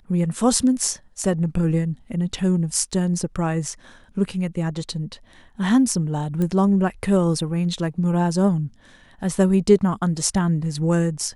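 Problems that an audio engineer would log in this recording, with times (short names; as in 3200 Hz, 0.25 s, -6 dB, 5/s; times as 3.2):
6.42 pop -15 dBFS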